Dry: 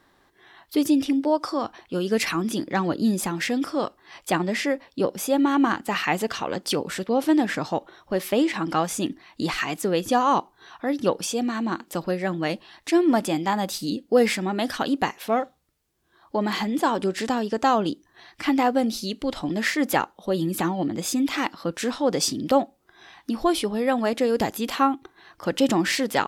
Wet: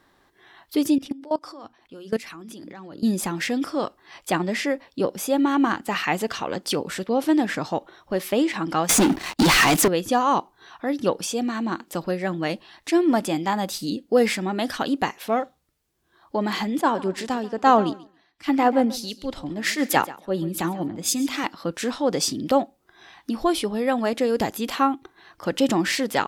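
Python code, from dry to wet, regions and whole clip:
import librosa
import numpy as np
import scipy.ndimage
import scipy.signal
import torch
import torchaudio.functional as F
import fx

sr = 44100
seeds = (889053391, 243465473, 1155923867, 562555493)

y = fx.chain(x, sr, fx.hum_notches(base_hz=60, count=5),
    fx.level_steps(step_db=20), at=(0.98, 3.03))
y = fx.chain(y, sr, fx.leveller(passes=5),
    fx.band_squash(depth_pct=40), at=(8.89, 9.88))
y = fx.chain(y, sr, fx.echo_feedback(ms=138, feedback_pct=27, wet_db=-15),
    fx.band_widen(depth_pct=100), at=(16.81, 21.44))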